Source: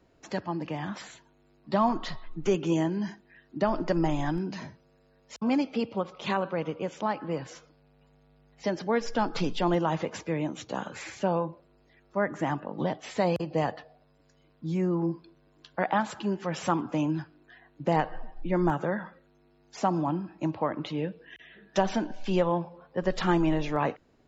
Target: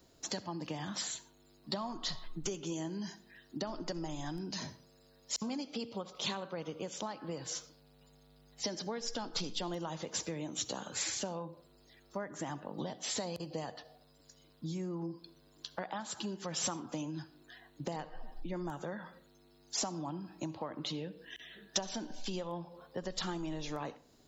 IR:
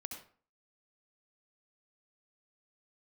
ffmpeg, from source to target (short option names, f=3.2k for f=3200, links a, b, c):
-filter_complex "[0:a]acompressor=threshold=-35dB:ratio=6,aexciter=amount=4.5:drive=4.8:freq=3.4k,asplit=2[a][b];[1:a]atrim=start_sample=2205[c];[b][c]afir=irnorm=-1:irlink=0,volume=-9.5dB[d];[a][d]amix=inputs=2:normalize=0,volume=-3.5dB"